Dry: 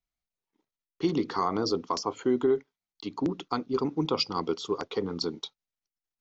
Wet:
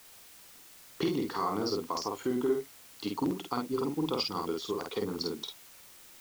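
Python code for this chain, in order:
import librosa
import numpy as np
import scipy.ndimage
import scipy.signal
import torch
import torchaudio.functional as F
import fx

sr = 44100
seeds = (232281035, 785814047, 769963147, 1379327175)

y = fx.recorder_agc(x, sr, target_db=-18.5, rise_db_per_s=16.0, max_gain_db=30)
y = fx.dmg_noise_colour(y, sr, seeds[0], colour='white', level_db=-50.0)
y = fx.doubler(y, sr, ms=49.0, db=-3)
y = F.gain(torch.from_numpy(y), -5.5).numpy()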